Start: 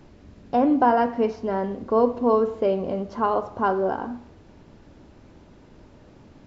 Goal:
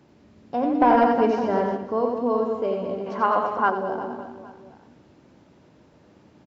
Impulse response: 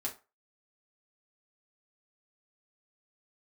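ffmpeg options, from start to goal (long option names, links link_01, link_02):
-filter_complex "[0:a]highpass=110,aecho=1:1:90|207|359.1|556.8|813.9:0.631|0.398|0.251|0.158|0.1,asplit=3[link_01][link_02][link_03];[link_01]afade=type=out:start_time=0.8:duration=0.02[link_04];[link_02]acontrast=67,afade=type=in:start_time=0.8:duration=0.02,afade=type=out:start_time=1.76:duration=0.02[link_05];[link_03]afade=type=in:start_time=1.76:duration=0.02[link_06];[link_04][link_05][link_06]amix=inputs=3:normalize=0,asettb=1/sr,asplit=3[link_07][link_08][link_09];[link_07]atrim=end=3.064[link_10];[link_08]atrim=start=3.06:end=3.7,asetpts=PTS-STARTPTS,afade=type=in:duration=0.004:curve=qsin,afade=type=out:start_time=0.636:duration=0.004:curve=qsin,equalizer=frequency=1700:width=0.62:gain=11[link_11];[link_09]atrim=start=3.696[link_12];[link_10][link_11]acrossfade=duration=0.004:curve1=hsin:curve2=qsin[link_13];[link_13][link_12]acrossfade=duration=0.004:curve1=qsin:curve2=hsin,volume=-5dB"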